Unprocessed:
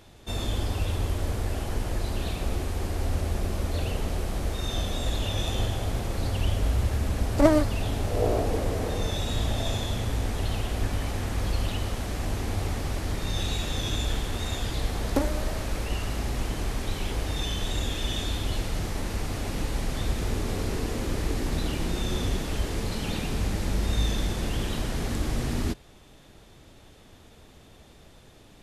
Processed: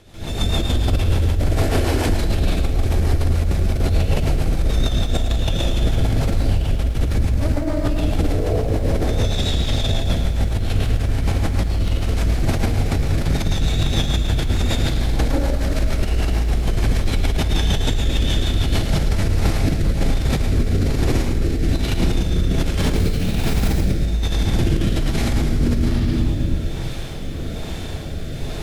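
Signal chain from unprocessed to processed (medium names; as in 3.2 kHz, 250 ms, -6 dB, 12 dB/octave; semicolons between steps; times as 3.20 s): 1.34–1.94 s: steep high-pass 230 Hz 96 dB/octave; 9.10–9.69 s: peaking EQ 4.3 kHz +6.5 dB 1.8 oct; 22.79–23.68 s: modulation noise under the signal 14 dB; reverberation RT60 1.1 s, pre-delay 139 ms, DRR -15.5 dB; compressor with a negative ratio -13 dBFS, ratio -1; peak limiter -9 dBFS, peak gain reduction 11.5 dB; rotary cabinet horn 6.7 Hz, later 1.2 Hz, at 18.67 s; bit-crushed delay 110 ms, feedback 35%, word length 8-bit, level -9 dB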